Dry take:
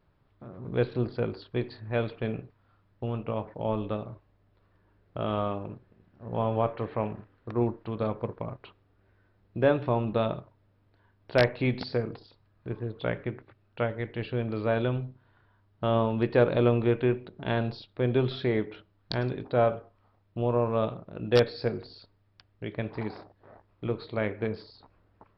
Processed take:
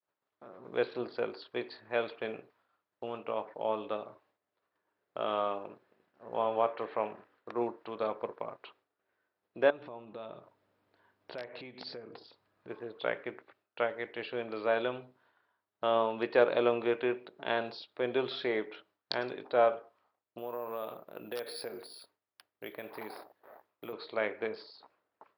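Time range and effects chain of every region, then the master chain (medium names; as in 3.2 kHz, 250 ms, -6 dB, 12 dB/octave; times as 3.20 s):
9.70–12.69 s: bass shelf 250 Hz +10.5 dB + compression 10:1, threshold -33 dBFS
20.38–23.93 s: compression 12:1, threshold -30 dBFS + careless resampling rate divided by 3×, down none, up hold
whole clip: expander -57 dBFS; high-pass 470 Hz 12 dB/octave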